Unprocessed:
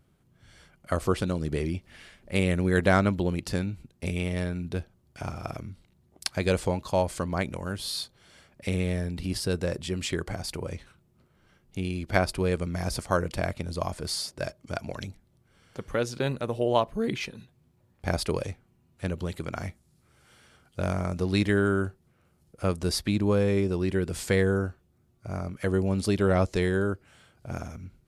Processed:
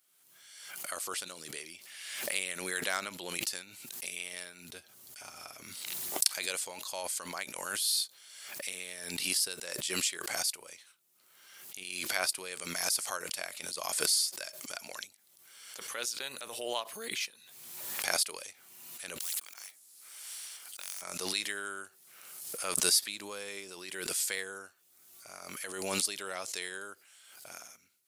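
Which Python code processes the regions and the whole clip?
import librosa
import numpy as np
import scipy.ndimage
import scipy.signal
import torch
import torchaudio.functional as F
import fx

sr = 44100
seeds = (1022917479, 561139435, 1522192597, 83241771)

y = fx.chain(x, sr, fx.low_shelf(hz=270.0, db=9.0),
    fx.notch_comb(f0_hz=170.0), at=(4.69, 5.63))
y = fx.chain(y, sr, fx.block_float(bits=7),
    fx.auto_swell(attack_ms=630.0),
    fx.spectral_comp(ratio=4.0), at=(19.2, 21.02))
y = fx.highpass(y, sr, hz=340.0, slope=6)
y = np.diff(y, prepend=0.0)
y = fx.pre_swell(y, sr, db_per_s=40.0)
y = y * 10.0 ** (5.5 / 20.0)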